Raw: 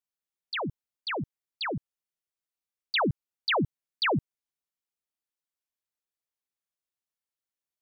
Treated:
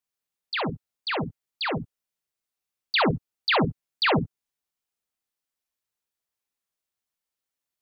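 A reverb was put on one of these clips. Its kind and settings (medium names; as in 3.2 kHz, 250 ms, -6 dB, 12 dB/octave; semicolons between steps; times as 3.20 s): gated-style reverb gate 80 ms rising, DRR 6 dB; trim +3.5 dB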